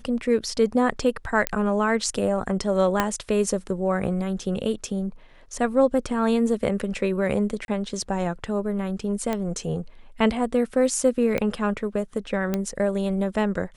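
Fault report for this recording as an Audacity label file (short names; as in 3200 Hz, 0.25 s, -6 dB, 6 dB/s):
1.470000	1.470000	pop -5 dBFS
3.000000	3.000000	pop -6 dBFS
7.650000	7.680000	gap 31 ms
9.330000	9.330000	pop -13 dBFS
11.380000	11.380000	pop -12 dBFS
12.540000	12.540000	pop -11 dBFS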